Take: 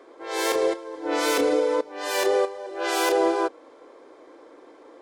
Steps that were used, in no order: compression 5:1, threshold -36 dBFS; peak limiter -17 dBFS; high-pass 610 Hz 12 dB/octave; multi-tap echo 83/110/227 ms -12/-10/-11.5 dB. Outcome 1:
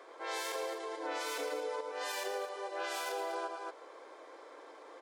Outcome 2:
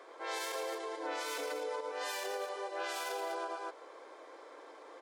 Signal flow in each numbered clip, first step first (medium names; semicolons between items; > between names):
high-pass > peak limiter > multi-tap echo > compression; multi-tap echo > peak limiter > high-pass > compression